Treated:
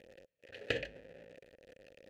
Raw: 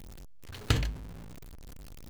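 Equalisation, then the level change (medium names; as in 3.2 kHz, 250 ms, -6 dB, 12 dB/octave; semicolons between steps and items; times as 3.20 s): vowel filter e; +9.5 dB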